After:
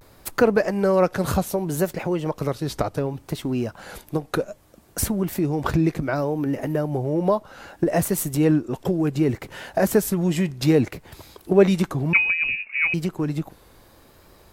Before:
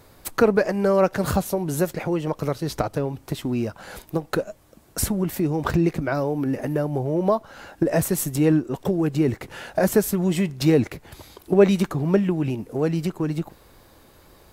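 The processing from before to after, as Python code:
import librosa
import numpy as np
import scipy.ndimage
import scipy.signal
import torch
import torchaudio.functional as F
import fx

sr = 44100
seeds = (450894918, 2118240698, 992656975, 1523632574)

y = fx.vibrato(x, sr, rate_hz=0.65, depth_cents=70.0)
y = fx.freq_invert(y, sr, carrier_hz=2700, at=(12.13, 12.94))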